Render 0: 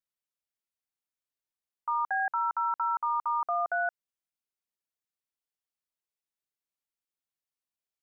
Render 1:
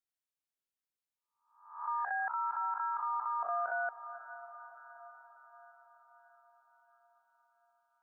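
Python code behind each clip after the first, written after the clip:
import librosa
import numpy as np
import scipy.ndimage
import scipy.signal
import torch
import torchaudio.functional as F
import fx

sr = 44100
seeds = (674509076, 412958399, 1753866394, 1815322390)

y = fx.spec_swells(x, sr, rise_s=0.6)
y = fx.echo_diffused(y, sr, ms=509, feedback_pct=59, wet_db=-14.0)
y = y * librosa.db_to_amplitude(-6.0)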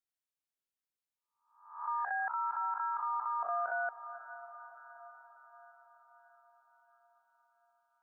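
y = x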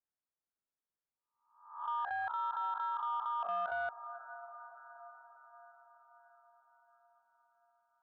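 y = scipy.signal.sosfilt(scipy.signal.butter(4, 1600.0, 'lowpass', fs=sr, output='sos'), x)
y = 10.0 ** (-27.0 / 20.0) * np.tanh(y / 10.0 ** (-27.0 / 20.0))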